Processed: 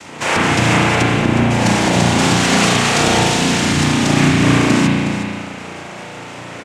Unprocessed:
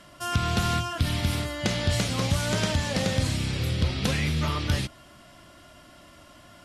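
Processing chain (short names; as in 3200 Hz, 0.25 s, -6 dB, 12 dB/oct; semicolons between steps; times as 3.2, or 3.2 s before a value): 1.02–1.5 LPF 2000 Hz 12 dB/oct; 2.18–3.91 tilt shelf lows -4 dB; compressor 2:1, threshold -34 dBFS, peak gain reduction 8.5 dB; noise vocoder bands 4; echo 0.364 s -10 dB; spring tank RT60 1.8 s, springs 34 ms, chirp 45 ms, DRR -4.5 dB; maximiser +16 dB; gain -1 dB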